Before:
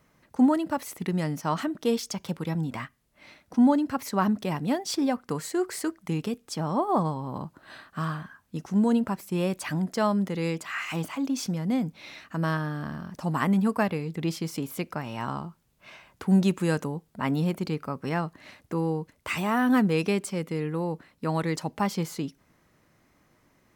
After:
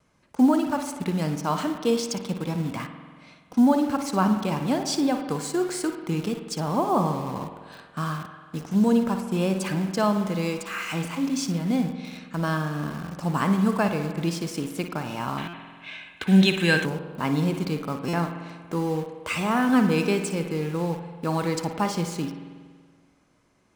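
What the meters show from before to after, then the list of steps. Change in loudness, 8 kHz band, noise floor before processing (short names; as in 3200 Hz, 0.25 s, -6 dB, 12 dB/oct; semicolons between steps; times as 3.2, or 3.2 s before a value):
+2.5 dB, +4.0 dB, -66 dBFS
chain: LPF 10000 Hz 24 dB/oct; high shelf 4600 Hz +3 dB; notch 1900 Hz, Q 8.9; on a send: flutter echo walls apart 9.9 m, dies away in 0.28 s; on the sum: vibrato 0.43 Hz 9.3 cents; in parallel at -6 dB: bit-crush 6-bit; on the sum: spring tank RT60 1.7 s, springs 47 ms, chirp 65 ms, DRR 7.5 dB; spectral gain 15.38–16.85, 1500–4200 Hz +12 dB; stuck buffer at 15.48/18.08, samples 256, times 8; gain -2 dB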